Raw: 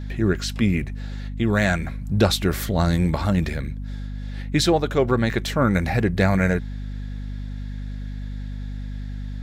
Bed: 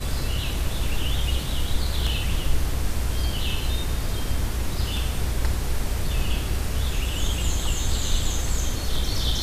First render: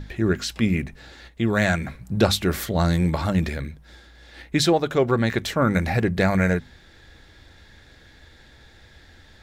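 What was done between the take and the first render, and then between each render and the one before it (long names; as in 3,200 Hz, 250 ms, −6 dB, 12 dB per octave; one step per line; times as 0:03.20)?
mains-hum notches 50/100/150/200/250 Hz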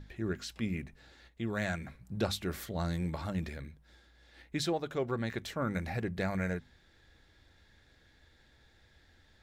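level −13.5 dB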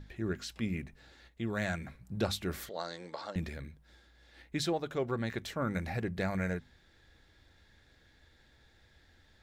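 0:02.69–0:03.36: loudspeaker in its box 490–7,200 Hz, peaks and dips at 500 Hz +5 dB, 2,400 Hz −7 dB, 4,600 Hz +8 dB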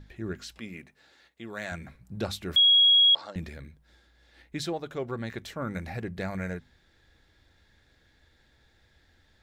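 0:00.59–0:01.72: high-pass filter 420 Hz 6 dB per octave
0:02.56–0:03.15: beep over 3,310 Hz −15.5 dBFS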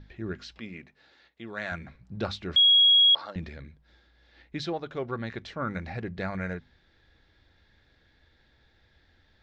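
dynamic equaliser 1,300 Hz, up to +6 dB, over −42 dBFS, Q 1.5
low-pass filter 5,200 Hz 24 dB per octave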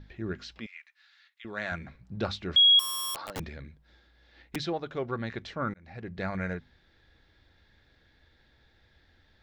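0:00.66–0:01.45: high-pass filter 1,300 Hz 24 dB per octave
0:02.79–0:04.56: wrap-around overflow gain 29 dB
0:05.74–0:06.29: fade in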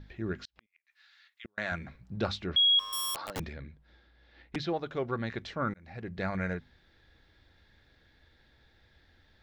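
0:00.41–0:01.58: gate with flip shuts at −32 dBFS, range −37 dB
0:02.46–0:02.93: high-frequency loss of the air 210 metres
0:03.53–0:04.70: high-frequency loss of the air 110 metres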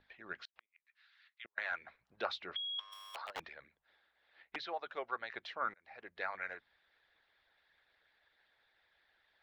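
harmonic and percussive parts rebalanced harmonic −15 dB
three-way crossover with the lows and the highs turned down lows −23 dB, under 560 Hz, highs −18 dB, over 4,100 Hz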